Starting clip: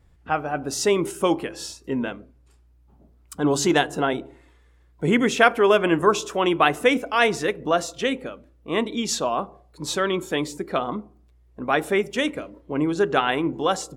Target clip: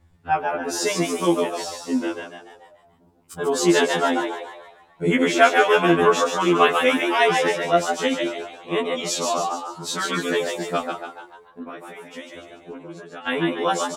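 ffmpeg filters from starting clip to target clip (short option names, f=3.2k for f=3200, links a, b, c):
-filter_complex "[0:a]asettb=1/sr,asplit=3[a][b][c];[a]atrim=end=10.814[d];[b]atrim=start=10.81:end=13.28,asetpts=PTS-STARTPTS,afade=t=in:d=0.004:c=qsin,afade=t=out:st=2.466:d=0.004:c=qsin,acompressor=threshold=-34dB:ratio=16[e];[c]atrim=start=13.276[f];[d][e]acrossfade=d=0.004:c1=hsin:c2=qsin[g];[g][f]acrossfade=d=0.004:c1=qsin:c2=hsin,asplit=7[h][i][j][k][l][m][n];[i]adelay=144,afreqshift=74,volume=-4dB[o];[j]adelay=288,afreqshift=148,volume=-10.6dB[p];[k]adelay=432,afreqshift=222,volume=-17.1dB[q];[l]adelay=576,afreqshift=296,volume=-23.7dB[r];[m]adelay=720,afreqshift=370,volume=-30.2dB[s];[n]adelay=864,afreqshift=444,volume=-36.8dB[t];[h][o][p][q][r][s][t]amix=inputs=7:normalize=0,afftfilt=real='re*2*eq(mod(b,4),0)':imag='im*2*eq(mod(b,4),0)':win_size=2048:overlap=0.75,volume=2.5dB"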